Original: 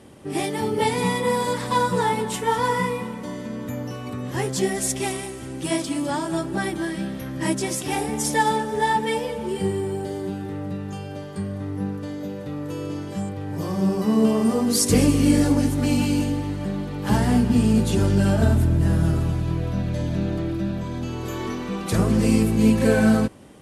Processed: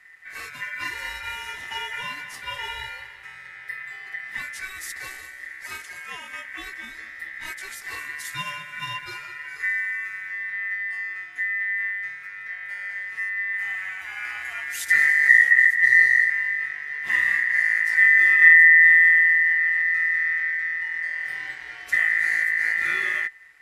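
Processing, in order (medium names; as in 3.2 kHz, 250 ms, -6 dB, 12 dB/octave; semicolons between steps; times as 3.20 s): 15.28–16.30 s: frequency shift -330 Hz; resonant low shelf 130 Hz +12.5 dB, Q 3; ring modulator 1.9 kHz; trim -8.5 dB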